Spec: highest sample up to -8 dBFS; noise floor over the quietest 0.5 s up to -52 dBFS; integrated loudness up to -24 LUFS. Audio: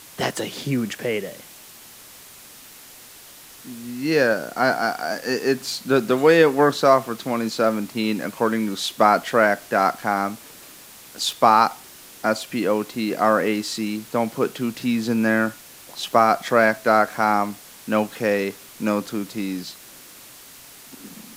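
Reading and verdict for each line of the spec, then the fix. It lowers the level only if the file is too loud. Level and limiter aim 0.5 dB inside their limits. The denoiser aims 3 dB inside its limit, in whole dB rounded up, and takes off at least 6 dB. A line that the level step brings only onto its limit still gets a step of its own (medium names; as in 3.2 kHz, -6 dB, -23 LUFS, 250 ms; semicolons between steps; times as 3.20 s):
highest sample -2.0 dBFS: fail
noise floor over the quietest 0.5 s -45 dBFS: fail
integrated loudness -21.5 LUFS: fail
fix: noise reduction 7 dB, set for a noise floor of -45 dBFS; trim -3 dB; peak limiter -8.5 dBFS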